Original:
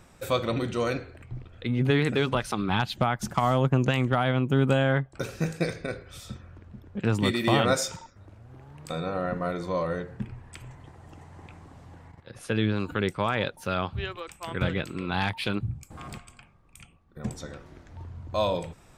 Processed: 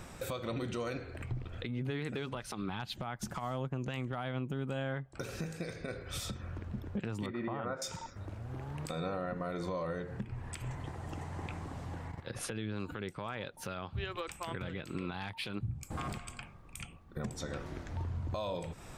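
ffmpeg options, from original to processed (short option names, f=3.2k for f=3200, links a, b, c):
-filter_complex "[0:a]asettb=1/sr,asplit=3[a][b][c];[a]atrim=end=7.264[d];[b]atrim=start=7.26:end=7.82,asetpts=PTS-STARTPTS,afade=t=in:d=0.004:c=qsin,afade=t=out:st=0.556:d=0.004:c=qsin,lowpass=f=1.3k:t=q:w=1.5[e];[c]atrim=start=7.816[f];[d][e]acrossfade=d=0.004:c1=hsin:c2=qsin[g];[g][f]acrossfade=d=0.004:c1=qsin:c2=hsin,acompressor=threshold=-39dB:ratio=6,alimiter=level_in=9.5dB:limit=-24dB:level=0:latency=1:release=125,volume=-9.5dB,volume=6dB"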